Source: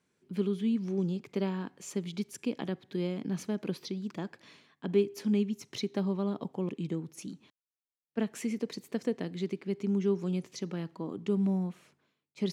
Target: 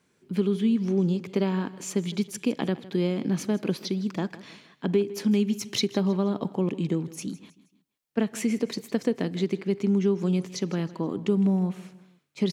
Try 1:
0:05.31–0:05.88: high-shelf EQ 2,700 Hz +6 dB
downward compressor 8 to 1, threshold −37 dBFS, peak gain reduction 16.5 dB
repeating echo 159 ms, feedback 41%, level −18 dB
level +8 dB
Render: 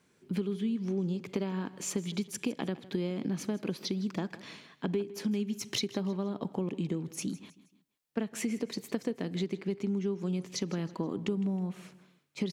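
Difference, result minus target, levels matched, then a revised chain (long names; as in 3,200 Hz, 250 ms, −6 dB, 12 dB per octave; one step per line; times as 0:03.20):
downward compressor: peak gain reduction +9 dB
0:05.31–0:05.88: high-shelf EQ 2,700 Hz +6 dB
downward compressor 8 to 1, threshold −26.5 dBFS, peak gain reduction 7 dB
repeating echo 159 ms, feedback 41%, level −18 dB
level +8 dB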